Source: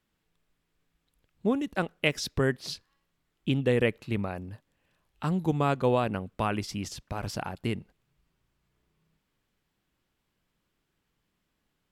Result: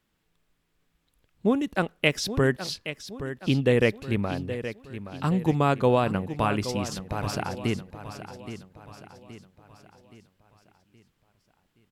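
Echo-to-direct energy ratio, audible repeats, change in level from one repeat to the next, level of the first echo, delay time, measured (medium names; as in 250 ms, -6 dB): -10.5 dB, 4, -6.5 dB, -11.5 dB, 822 ms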